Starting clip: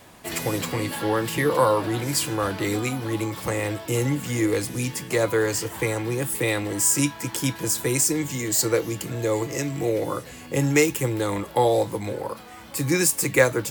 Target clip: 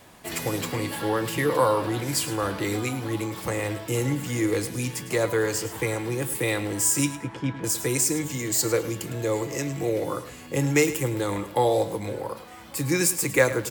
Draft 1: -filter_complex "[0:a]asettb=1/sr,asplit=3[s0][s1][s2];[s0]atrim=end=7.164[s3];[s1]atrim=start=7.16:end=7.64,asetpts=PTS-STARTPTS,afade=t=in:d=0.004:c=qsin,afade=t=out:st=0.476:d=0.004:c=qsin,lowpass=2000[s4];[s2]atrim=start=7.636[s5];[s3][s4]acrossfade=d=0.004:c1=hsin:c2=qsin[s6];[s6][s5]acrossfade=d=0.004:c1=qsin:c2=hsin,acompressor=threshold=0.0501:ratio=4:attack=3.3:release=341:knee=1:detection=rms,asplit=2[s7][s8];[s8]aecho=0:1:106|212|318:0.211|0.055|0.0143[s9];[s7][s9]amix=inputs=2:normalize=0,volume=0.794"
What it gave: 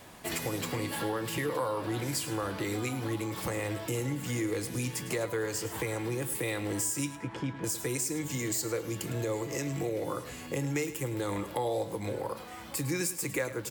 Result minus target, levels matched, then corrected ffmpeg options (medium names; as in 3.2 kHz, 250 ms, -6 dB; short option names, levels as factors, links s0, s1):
compression: peak gain reduction +14.5 dB
-filter_complex "[0:a]asettb=1/sr,asplit=3[s0][s1][s2];[s0]atrim=end=7.164[s3];[s1]atrim=start=7.16:end=7.64,asetpts=PTS-STARTPTS,afade=t=in:d=0.004:c=qsin,afade=t=out:st=0.476:d=0.004:c=qsin,lowpass=2000[s4];[s2]atrim=start=7.636[s5];[s3][s4]acrossfade=d=0.004:c1=hsin:c2=qsin[s6];[s6][s5]acrossfade=d=0.004:c1=qsin:c2=hsin,asplit=2[s7][s8];[s8]aecho=0:1:106|212|318:0.211|0.055|0.0143[s9];[s7][s9]amix=inputs=2:normalize=0,volume=0.794"